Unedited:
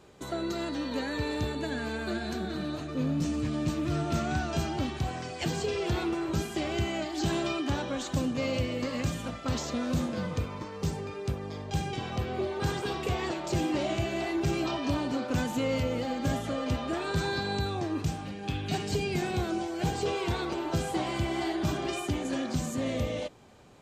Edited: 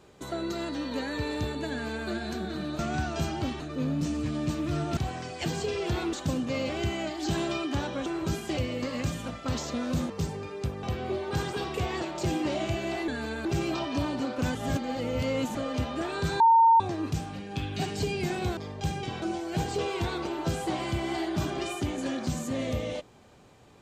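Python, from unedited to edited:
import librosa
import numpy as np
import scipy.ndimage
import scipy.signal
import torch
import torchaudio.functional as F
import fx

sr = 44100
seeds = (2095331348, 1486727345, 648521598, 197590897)

y = fx.edit(x, sr, fx.duplicate(start_s=1.71, length_s=0.37, to_s=14.37),
    fx.move(start_s=4.16, length_s=0.81, to_s=2.79),
    fx.swap(start_s=6.13, length_s=0.51, other_s=8.01, other_length_s=0.56),
    fx.cut(start_s=10.1, length_s=0.64),
    fx.move(start_s=11.47, length_s=0.65, to_s=19.49),
    fx.reverse_span(start_s=15.47, length_s=1.0),
    fx.bleep(start_s=17.32, length_s=0.4, hz=912.0, db=-15.0), tone=tone)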